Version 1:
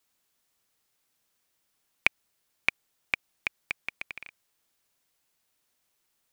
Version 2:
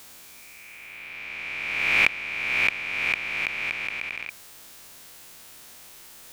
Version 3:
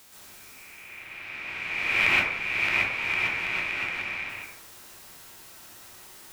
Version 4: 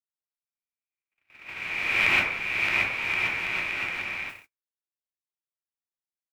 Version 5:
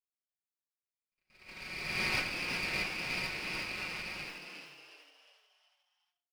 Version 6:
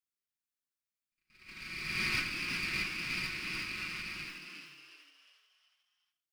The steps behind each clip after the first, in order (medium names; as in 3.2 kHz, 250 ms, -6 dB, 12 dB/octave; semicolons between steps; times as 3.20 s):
reverse spectral sustain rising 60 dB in 1.60 s; reverse; upward compressor, threshold -24 dBFS; reverse; trim -1 dB
plate-style reverb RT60 0.74 s, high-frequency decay 0.45×, pre-delay 110 ms, DRR -7 dB; trim -6.5 dB
gate -35 dBFS, range -57 dB
comb filter that takes the minimum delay 5.4 ms; frequency-shifting echo 361 ms, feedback 42%, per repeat +140 Hz, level -6 dB; trim -9 dB
high-order bell 630 Hz -14 dB 1.3 oct